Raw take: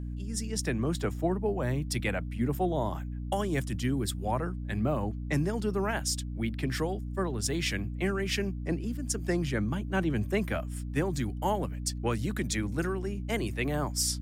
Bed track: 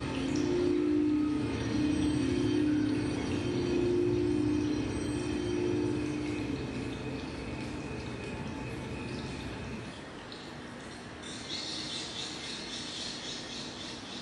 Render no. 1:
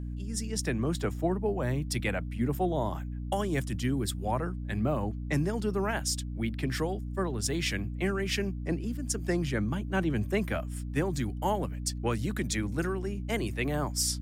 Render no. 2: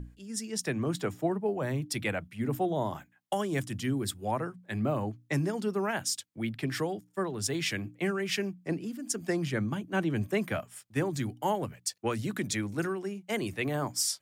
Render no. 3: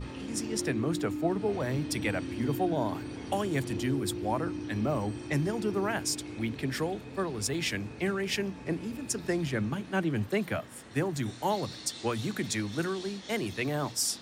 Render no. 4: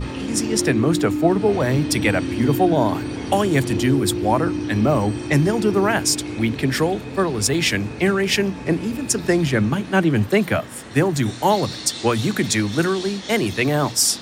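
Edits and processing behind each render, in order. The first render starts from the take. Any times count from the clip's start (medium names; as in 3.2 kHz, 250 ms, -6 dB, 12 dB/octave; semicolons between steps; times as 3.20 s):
no audible change
hum notches 60/120/180/240/300 Hz
add bed track -7 dB
trim +12 dB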